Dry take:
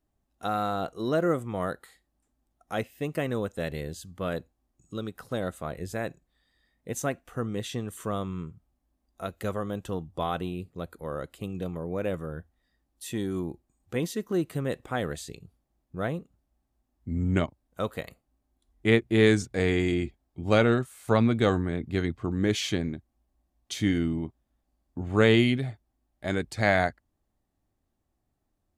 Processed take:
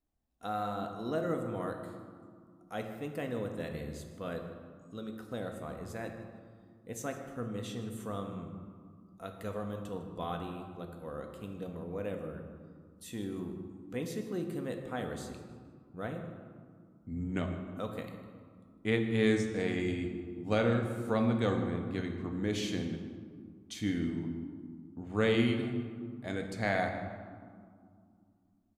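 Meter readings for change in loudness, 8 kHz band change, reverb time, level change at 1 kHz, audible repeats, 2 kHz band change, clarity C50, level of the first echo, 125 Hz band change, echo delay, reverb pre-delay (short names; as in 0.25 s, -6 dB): -7.0 dB, -8.0 dB, 2.3 s, -6.5 dB, 1, -8.0 dB, 6.0 dB, -17.0 dB, -7.5 dB, 0.154 s, 4 ms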